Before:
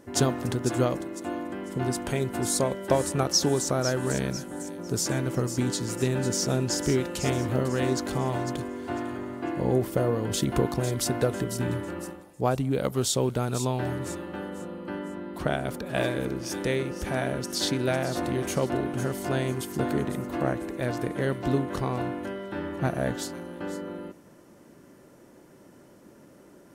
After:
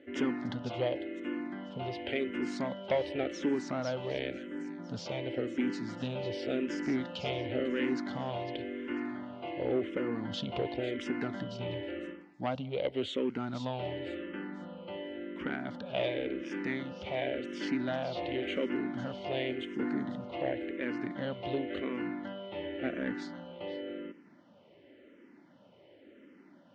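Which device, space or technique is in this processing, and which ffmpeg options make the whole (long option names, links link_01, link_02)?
barber-pole phaser into a guitar amplifier: -filter_complex "[0:a]asplit=2[link_01][link_02];[link_02]afreqshift=-0.92[link_03];[link_01][link_03]amix=inputs=2:normalize=1,asoftclip=type=tanh:threshold=-20dB,highpass=110,equalizer=frequency=140:width_type=q:width=4:gain=-8,equalizer=frequency=270:width_type=q:width=4:gain=5,equalizer=frequency=560:width_type=q:width=4:gain=4,equalizer=frequency=1100:width_type=q:width=4:gain=-5,equalizer=frequency=2100:width_type=q:width=4:gain=8,equalizer=frequency=3000:width_type=q:width=4:gain=9,lowpass=frequency=4100:width=0.5412,lowpass=frequency=4100:width=1.3066,asettb=1/sr,asplit=3[link_04][link_05][link_06];[link_04]atrim=end=19.744[link_07];[link_05]atrim=start=19.74:end=20.32,asetpts=PTS-STARTPTS,afade=type=in:duration=0.004:curve=qsin,afade=type=out:start_time=0.576:duration=0.004:curve=qsin,equalizer=frequency=2600:width_type=o:width=0.64:gain=-7[link_08];[link_06]atrim=start=20.316[link_09];[link_07][link_08]acrossfade=duration=0.004:curve1=hsin:curve2=qsin[link_10];[link_10][link_09]acrossfade=duration=0.004:curve1=qsin:curve2=hsin,volume=-4dB"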